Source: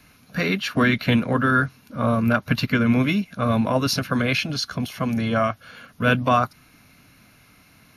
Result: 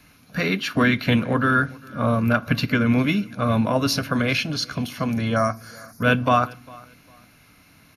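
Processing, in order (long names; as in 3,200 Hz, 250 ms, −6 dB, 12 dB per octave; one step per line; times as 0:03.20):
0:05.36–0:06.03: drawn EQ curve 2,000 Hz 0 dB, 3,000 Hz −22 dB, 4,800 Hz +12 dB
repeating echo 402 ms, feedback 27%, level −24 dB
feedback delay network reverb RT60 0.46 s, low-frequency decay 1.55×, high-frequency decay 0.8×, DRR 16 dB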